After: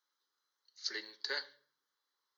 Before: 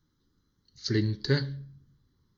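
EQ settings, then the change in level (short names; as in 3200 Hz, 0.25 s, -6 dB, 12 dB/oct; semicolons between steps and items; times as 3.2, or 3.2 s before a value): HPF 620 Hz 24 dB/oct; -3.5 dB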